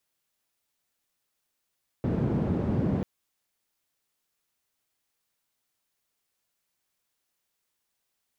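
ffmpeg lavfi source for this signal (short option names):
-f lavfi -i "anoisesrc=c=white:d=0.99:r=44100:seed=1,highpass=f=100,lowpass=f=200,volume=1dB"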